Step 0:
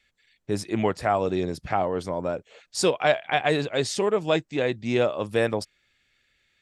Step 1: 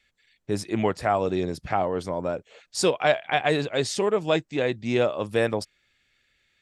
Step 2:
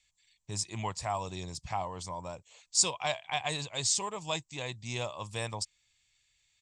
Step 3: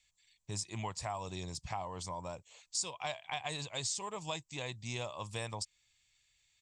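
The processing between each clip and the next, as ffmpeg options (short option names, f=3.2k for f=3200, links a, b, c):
-af anull
-af "firequalizer=gain_entry='entry(110,0);entry(240,-13);entry(420,-15);entry(1000,3);entry(1400,-12);entry(2300,-2);entry(7600,14);entry(11000,-8)':delay=0.05:min_phase=1,volume=-5dB"
-af "acompressor=threshold=-35dB:ratio=3,volume=-1dB"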